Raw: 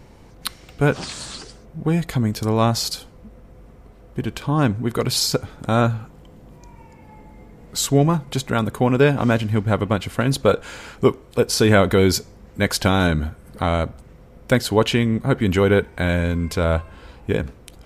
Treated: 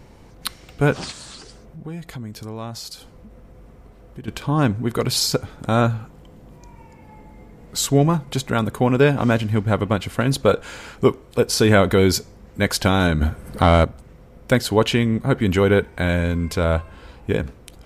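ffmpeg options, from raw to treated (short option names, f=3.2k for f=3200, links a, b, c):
-filter_complex "[0:a]asettb=1/sr,asplit=3[a][b][c];[a]atrim=end=1.114[d];[b]atrim=start=1.11:end=4.28,asetpts=PTS-STARTPTS,afade=t=in:d=0.004:c=qsin,afade=t=out:st=3.166:d=0.004:c=qsin,acompressor=threshold=-39dB:ratio=2:attack=3.2:release=140:knee=1:detection=peak[e];[c]atrim=start=4.276[f];[d][e]acrossfade=d=0.004:c1=hsin:c2=qsin[g];[g][f]acrossfade=d=0.004:c1=qsin:c2=hsin,asettb=1/sr,asplit=3[h][i][j];[h]atrim=end=13.214[k];[i]atrim=start=13.21:end=13.85,asetpts=PTS-STARTPTS,afade=t=in:d=0.004:c=qsin,afade=t=out:st=0.636:d=0.004:c=qsin,acontrast=78[l];[j]atrim=start=13.846[m];[k][l]acrossfade=d=0.004:c1=hsin:c2=qsin[n];[n][m]acrossfade=d=0.004:c1=qsin:c2=hsin"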